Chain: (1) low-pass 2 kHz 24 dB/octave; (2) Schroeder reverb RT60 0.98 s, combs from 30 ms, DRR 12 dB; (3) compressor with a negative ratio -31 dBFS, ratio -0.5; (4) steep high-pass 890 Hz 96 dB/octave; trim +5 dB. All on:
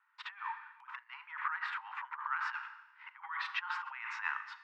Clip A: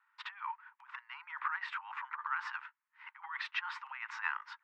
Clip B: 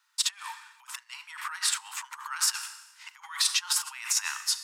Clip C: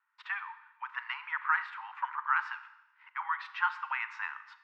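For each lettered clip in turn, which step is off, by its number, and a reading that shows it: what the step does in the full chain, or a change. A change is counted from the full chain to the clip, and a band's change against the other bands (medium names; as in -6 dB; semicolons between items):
2, crest factor change +2.5 dB; 1, momentary loudness spread change +4 LU; 3, loudness change +5.5 LU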